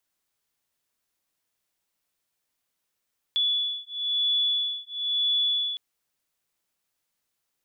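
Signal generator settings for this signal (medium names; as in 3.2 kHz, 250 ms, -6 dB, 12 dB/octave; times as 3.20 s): beating tones 3.43 kHz, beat 1 Hz, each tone -26.5 dBFS 2.41 s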